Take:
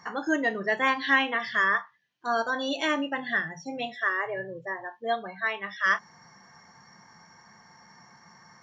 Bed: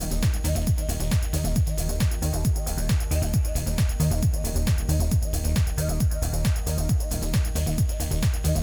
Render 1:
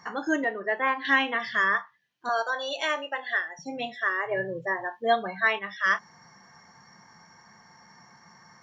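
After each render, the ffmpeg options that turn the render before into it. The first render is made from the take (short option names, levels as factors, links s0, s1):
-filter_complex "[0:a]asettb=1/sr,asplit=3[s0][s1][s2];[s0]atrim=end=0.444[s3];[s1]atrim=start=0.44:end=1.05,asetpts=PTS-STARTPTS,afade=t=in:d=0.004:c=qsin,afade=t=out:st=0.606:d=0.004:c=qsin,acrossover=split=260 2600:gain=0.0708 1 0.0708[s4][s5][s6];[s4][s5][s6]amix=inputs=3:normalize=0[s7];[s2]atrim=start=1.046[s8];[s3][s7]acrossfade=d=0.004:c1=hsin:c2=qsin[s9];[s9][s8]acrossfade=d=0.004:c1=qsin:c2=hsin,asettb=1/sr,asplit=3[s10][s11][s12];[s10]atrim=end=2.294[s13];[s11]atrim=start=2.29:end=3.59,asetpts=PTS-STARTPTS,afade=t=in:d=0.004:c=qsin,afade=t=out:st=1.296:d=0.004:c=qsin,highpass=f=440:w=0.5412,highpass=f=440:w=1.3066[s14];[s12]atrim=start=3.586[s15];[s13][s14]acrossfade=d=0.004:c1=hsin:c2=qsin[s16];[s16][s15]acrossfade=d=0.004:c1=qsin:c2=hsin,asettb=1/sr,asplit=3[s17][s18][s19];[s17]atrim=end=4.314[s20];[s18]atrim=start=4.31:end=5.59,asetpts=PTS-STARTPTS,afade=t=in:d=0.004:c=qsin,afade=t=out:st=1.276:d=0.004:c=qsin,acontrast=31[s21];[s19]atrim=start=5.586[s22];[s20][s21]acrossfade=d=0.004:c1=hsin:c2=qsin[s23];[s23][s22]acrossfade=d=0.004:c1=qsin:c2=hsin"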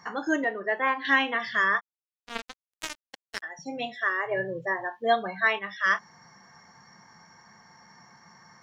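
-filter_complex "[0:a]asplit=3[s0][s1][s2];[s0]afade=t=out:st=1.79:d=0.02[s3];[s1]acrusher=bits=2:mix=0:aa=0.5,afade=t=in:st=1.79:d=0.02,afade=t=out:st=3.42:d=0.02[s4];[s2]afade=t=in:st=3.42:d=0.02[s5];[s3][s4][s5]amix=inputs=3:normalize=0"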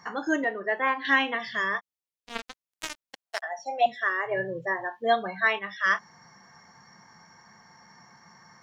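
-filter_complex "[0:a]asettb=1/sr,asplit=3[s0][s1][s2];[s0]atrim=end=1.354[s3];[s1]atrim=start=1.35:end=2.34,asetpts=PTS-STARTPTS,afade=t=in:d=0.004:c=qsin,afade=t=out:st=0.986:d=0.004:c=qsin,equalizer=f=1400:w=2.4:g=-9[s4];[s2]atrim=start=2.336[s5];[s3][s4]acrossfade=d=0.004:c1=hsin:c2=qsin[s6];[s6][s5]acrossfade=d=0.004:c1=qsin:c2=hsin,asettb=1/sr,asplit=3[s7][s8][s9];[s7]atrim=end=3.264[s10];[s8]atrim=start=3.26:end=3.86,asetpts=PTS-STARTPTS,afade=t=in:d=0.004:c=qsin,afade=t=out:st=0.596:d=0.004:c=qsin,highpass=f=680:t=q:w=6.2[s11];[s9]atrim=start=3.856[s12];[s10][s11]acrossfade=d=0.004:c1=hsin:c2=qsin[s13];[s13][s12]acrossfade=d=0.004:c1=qsin:c2=hsin"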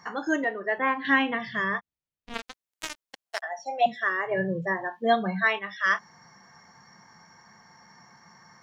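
-filter_complex "[0:a]asettb=1/sr,asplit=3[s0][s1][s2];[s0]atrim=end=0.784[s3];[s1]atrim=start=0.78:end=2.34,asetpts=PTS-STARTPTS,afade=t=in:d=0.004:c=qsin,afade=t=out:st=1.556:d=0.004:c=qsin,bass=f=250:g=13,treble=f=4000:g=-10[s4];[s2]atrim=start=2.336[s5];[s3][s4]acrossfade=d=0.004:c1=hsin:c2=qsin[s6];[s6][s5]acrossfade=d=0.004:c1=qsin:c2=hsin,asettb=1/sr,asplit=3[s7][s8][s9];[s7]atrim=end=3.854[s10];[s8]atrim=start=3.85:end=5.43,asetpts=PTS-STARTPTS,afade=t=in:d=0.004:c=qsin,afade=t=out:st=1.576:d=0.004:c=qsin,highpass=f=180:t=q:w=4.9[s11];[s9]atrim=start=5.426[s12];[s10][s11]acrossfade=d=0.004:c1=hsin:c2=qsin[s13];[s13][s12]acrossfade=d=0.004:c1=qsin:c2=hsin"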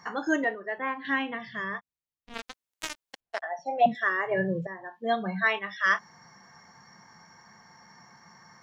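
-filter_complex "[0:a]asettb=1/sr,asplit=3[s0][s1][s2];[s0]atrim=end=3.204[s3];[s1]atrim=start=3.2:end=3.95,asetpts=PTS-STARTPTS,afade=t=in:d=0.004:c=qsin,afade=t=out:st=0.746:d=0.004:c=qsin,aemphasis=mode=reproduction:type=riaa[s4];[s2]atrim=start=3.946[s5];[s3][s4]acrossfade=d=0.004:c1=hsin:c2=qsin[s6];[s6][s5]acrossfade=d=0.004:c1=qsin:c2=hsin,asplit=4[s7][s8][s9][s10];[s7]atrim=end=0.552[s11];[s8]atrim=start=0.548:end=2.372,asetpts=PTS-STARTPTS,volume=0.501[s12];[s9]atrim=start=2.368:end=4.67,asetpts=PTS-STARTPTS,afade=t=out:st=2.298:d=0.004:c=hsin:silence=0.188365[s13];[s10]atrim=start=4.67,asetpts=PTS-STARTPTS,afade=t=in:d=0.96:silence=0.188365[s14];[s11][s12]acrossfade=d=0.004:c1=hsin:c2=hsin[s15];[s13][s14]concat=n=2:v=0:a=1[s16];[s15][s16]acrossfade=d=0.004:c1=hsin:c2=hsin"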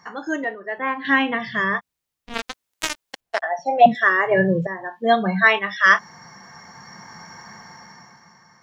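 -af "dynaudnorm=f=160:g=11:m=4.73"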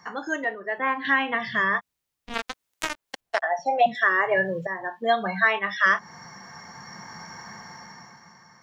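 -filter_complex "[0:a]acrossover=split=580|2300[s0][s1][s2];[s0]acompressor=threshold=0.02:ratio=4[s3];[s1]acompressor=threshold=0.126:ratio=4[s4];[s2]acompressor=threshold=0.02:ratio=4[s5];[s3][s4][s5]amix=inputs=3:normalize=0"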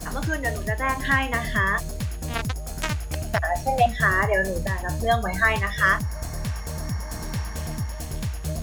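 -filter_complex "[1:a]volume=0.501[s0];[0:a][s0]amix=inputs=2:normalize=0"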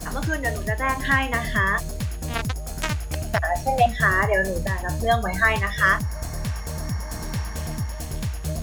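-af "volume=1.12"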